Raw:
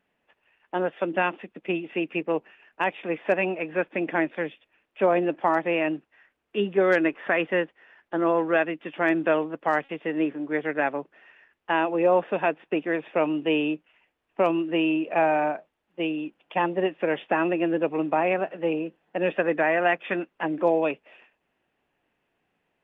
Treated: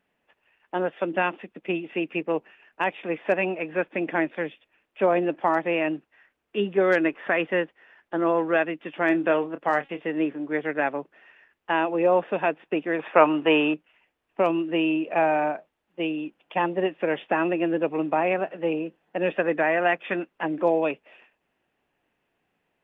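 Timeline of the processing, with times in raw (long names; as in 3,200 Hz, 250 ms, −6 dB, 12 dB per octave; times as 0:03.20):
0:09.06–0:10.07: double-tracking delay 28 ms −11.5 dB
0:12.99–0:13.74: parametric band 1,200 Hz +13 dB 1.9 octaves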